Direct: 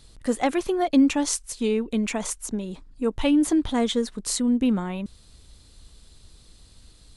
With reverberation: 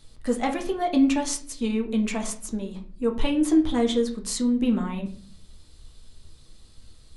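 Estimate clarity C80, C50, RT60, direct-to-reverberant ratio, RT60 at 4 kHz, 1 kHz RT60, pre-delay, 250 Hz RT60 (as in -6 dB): 16.0 dB, 11.0 dB, 0.45 s, 2.0 dB, 0.30 s, 0.40 s, 4 ms, 0.80 s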